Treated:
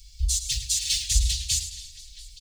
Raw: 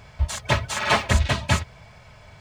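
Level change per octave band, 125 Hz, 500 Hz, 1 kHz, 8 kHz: -7.5 dB, under -40 dB, under -40 dB, +9.0 dB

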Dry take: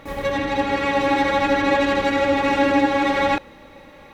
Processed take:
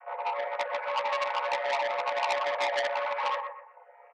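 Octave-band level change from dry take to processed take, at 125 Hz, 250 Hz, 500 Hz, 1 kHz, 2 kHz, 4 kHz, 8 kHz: under -35 dB, under -35 dB, -10.5 dB, -8.0 dB, -10.0 dB, -7.5 dB, -8.5 dB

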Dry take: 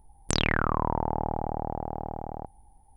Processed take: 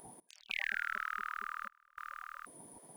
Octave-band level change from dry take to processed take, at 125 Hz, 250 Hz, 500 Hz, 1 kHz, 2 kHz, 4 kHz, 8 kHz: under -35 dB, -28.5 dB, -28.0 dB, -12.0 dB, -3.0 dB, -13.5 dB, -16.0 dB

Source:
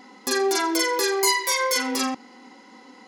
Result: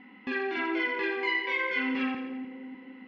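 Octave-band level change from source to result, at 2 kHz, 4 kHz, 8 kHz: -1.5 dB, -13.5 dB, under -40 dB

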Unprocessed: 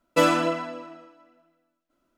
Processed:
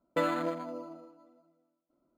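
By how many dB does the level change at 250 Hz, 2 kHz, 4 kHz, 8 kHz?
-9.0 dB, -11.0 dB, -14.5 dB, under -15 dB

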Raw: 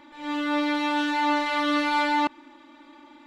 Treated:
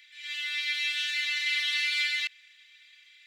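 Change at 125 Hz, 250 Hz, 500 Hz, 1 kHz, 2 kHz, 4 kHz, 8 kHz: no reading, under -40 dB, under -40 dB, under -30 dB, 0.0 dB, +4.5 dB, +4.5 dB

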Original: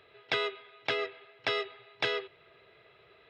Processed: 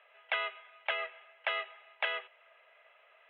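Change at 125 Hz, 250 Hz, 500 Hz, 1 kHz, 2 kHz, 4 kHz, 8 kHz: under -40 dB, under -25 dB, -8.0 dB, -1.0 dB, -0.5 dB, -5.0 dB, no reading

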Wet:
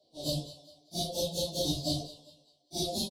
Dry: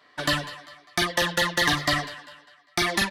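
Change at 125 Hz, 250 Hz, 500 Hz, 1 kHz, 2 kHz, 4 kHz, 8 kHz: -4.0 dB, -5.5 dB, -4.5 dB, -15.5 dB, -39.5 dB, -7.5 dB, -5.5 dB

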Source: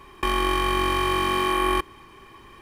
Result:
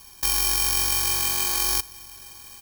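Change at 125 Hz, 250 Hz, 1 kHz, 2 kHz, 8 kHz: -5.5 dB, -15.0 dB, -11.5 dB, -4.5 dB, +16.5 dB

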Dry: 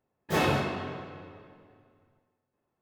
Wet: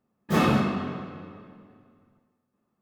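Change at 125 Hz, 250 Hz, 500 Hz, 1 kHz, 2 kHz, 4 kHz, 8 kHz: +5.0 dB, +8.5 dB, +1.0 dB, +2.5 dB, +0.5 dB, 0.0 dB, 0.0 dB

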